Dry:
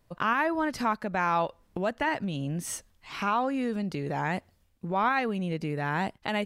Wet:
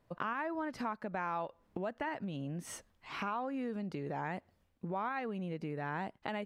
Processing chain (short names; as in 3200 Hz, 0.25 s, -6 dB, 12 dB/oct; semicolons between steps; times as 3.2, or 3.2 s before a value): high shelf 3300 Hz -12 dB; compressor 3:1, threshold -36 dBFS, peak gain reduction 11 dB; low shelf 100 Hz -10 dB